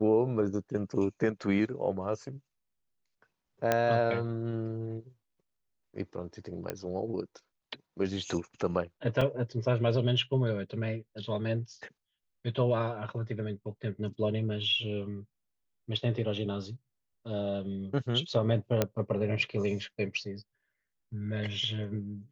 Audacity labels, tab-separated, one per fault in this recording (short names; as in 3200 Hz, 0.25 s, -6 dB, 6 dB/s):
3.720000	3.720000	pop -11 dBFS
6.700000	6.700000	pop -19 dBFS
9.210000	9.210000	gap 4 ms
18.820000	18.820000	pop -11 dBFS